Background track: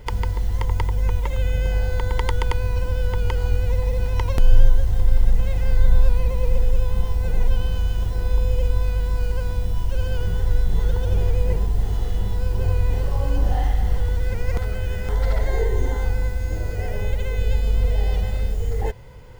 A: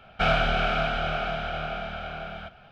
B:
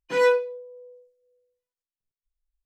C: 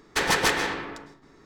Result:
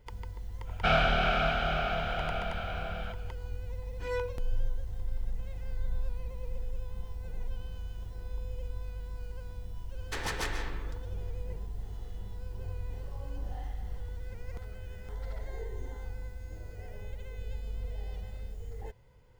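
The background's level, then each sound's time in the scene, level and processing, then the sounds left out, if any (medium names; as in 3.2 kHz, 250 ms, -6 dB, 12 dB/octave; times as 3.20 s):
background track -18 dB
0.64 s: add A -2.5 dB, fades 0.05 s
3.90 s: add B -15 dB
9.96 s: add C -13 dB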